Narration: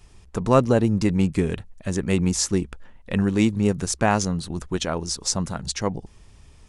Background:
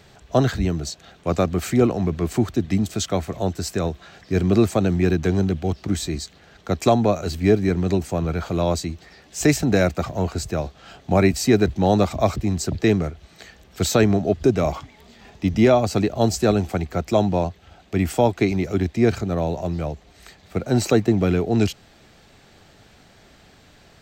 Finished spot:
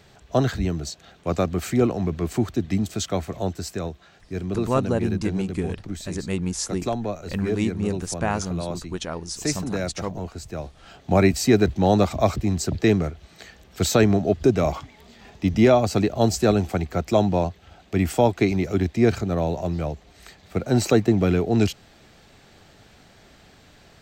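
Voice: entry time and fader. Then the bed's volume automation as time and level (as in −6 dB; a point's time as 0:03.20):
4.20 s, −5.0 dB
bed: 0:03.41 −2.5 dB
0:04.25 −9.5 dB
0:10.40 −9.5 dB
0:11.13 −0.5 dB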